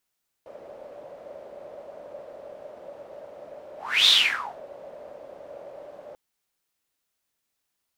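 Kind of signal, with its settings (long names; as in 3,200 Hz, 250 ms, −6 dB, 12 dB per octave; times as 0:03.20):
pass-by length 5.69 s, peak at 0:03.62, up 0.34 s, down 0.56 s, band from 580 Hz, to 3,700 Hz, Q 9.6, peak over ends 26 dB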